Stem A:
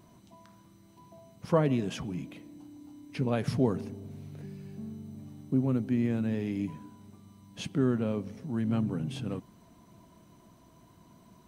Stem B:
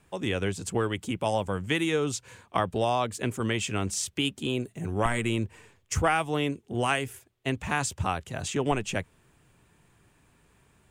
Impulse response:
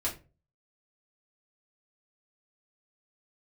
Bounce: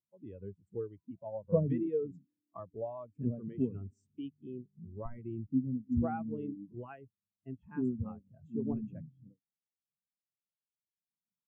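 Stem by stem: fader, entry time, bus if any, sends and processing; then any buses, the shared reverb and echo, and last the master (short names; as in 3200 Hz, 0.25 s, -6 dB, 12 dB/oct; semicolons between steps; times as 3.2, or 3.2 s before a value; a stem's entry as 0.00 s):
+0.5 dB, 0.00 s, no send, ending taper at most 200 dB/s; auto duck -6 dB, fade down 1.85 s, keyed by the second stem
-6.0 dB, 0.00 s, no send, dry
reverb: off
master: high shelf 2100 Hz -6 dB; notch 740 Hz, Q 17; spectral expander 2.5:1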